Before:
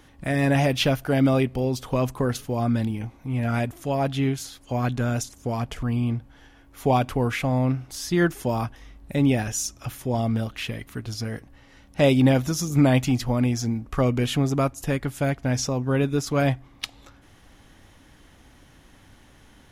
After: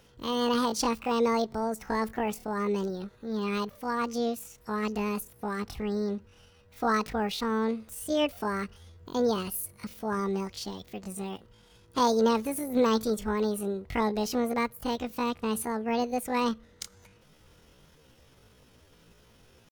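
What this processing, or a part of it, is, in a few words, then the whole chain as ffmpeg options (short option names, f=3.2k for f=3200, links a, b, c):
chipmunk voice: -af "asetrate=76340,aresample=44100,atempo=0.577676,volume=-6dB"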